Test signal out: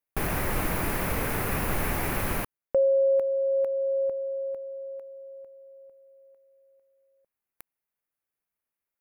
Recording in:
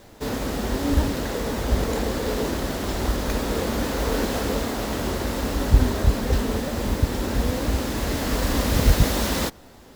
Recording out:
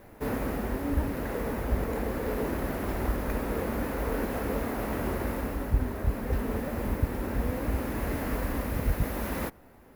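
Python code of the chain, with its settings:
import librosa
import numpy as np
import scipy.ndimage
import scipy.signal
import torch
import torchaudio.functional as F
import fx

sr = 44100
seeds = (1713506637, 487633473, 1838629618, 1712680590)

y = fx.band_shelf(x, sr, hz=5100.0, db=-12.5, octaves=1.7)
y = fx.rider(y, sr, range_db=4, speed_s=0.5)
y = y * 10.0 ** (-6.5 / 20.0)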